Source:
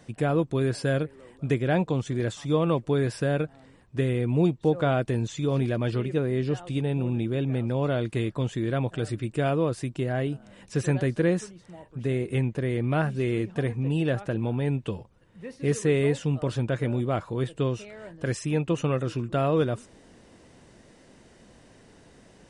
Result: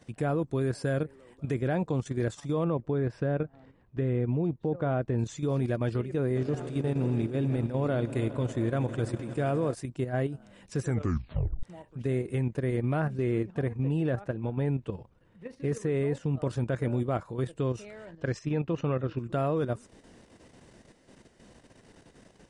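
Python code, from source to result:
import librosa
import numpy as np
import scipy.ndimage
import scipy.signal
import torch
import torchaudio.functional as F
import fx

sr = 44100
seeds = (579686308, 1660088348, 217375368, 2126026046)

y = fx.spacing_loss(x, sr, db_at_10k=24, at=(2.64, 5.19))
y = fx.echo_swell(y, sr, ms=80, loudest=5, wet_db=-18.0, at=(6.35, 9.73), fade=0.02)
y = fx.high_shelf(y, sr, hz=4500.0, db=-9.0, at=(13.0, 16.42))
y = fx.lowpass(y, sr, hz=fx.line((18.05, 7200.0), (19.17, 3700.0)), slope=24, at=(18.05, 19.17), fade=0.02)
y = fx.edit(y, sr, fx.tape_stop(start_s=10.84, length_s=0.79), tone=tone)
y = fx.dynamic_eq(y, sr, hz=3100.0, q=1.4, threshold_db=-51.0, ratio=4.0, max_db=-7)
y = fx.level_steps(y, sr, step_db=9)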